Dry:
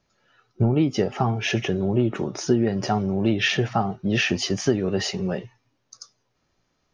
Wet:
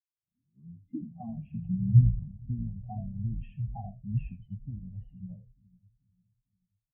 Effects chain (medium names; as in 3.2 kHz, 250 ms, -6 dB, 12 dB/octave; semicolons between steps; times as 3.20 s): tape start-up on the opening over 1.29 s; low-pass 2.3 kHz 12 dB/octave; peaking EQ 1.5 kHz -9.5 dB 0.94 oct; static phaser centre 1.5 kHz, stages 6; in parallel at -7 dB: saturation -22 dBFS, distortion -11 dB; on the sum: feedback echo behind a low-pass 443 ms, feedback 67%, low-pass 430 Hz, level -10 dB; high-pass sweep 360 Hz -> 64 Hz, 0.50–2.89 s; on a send: frequency-shifting echo 81 ms, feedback 31%, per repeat -71 Hz, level -4 dB; on the sum: spectral contrast expander 2.5:1; trim -2 dB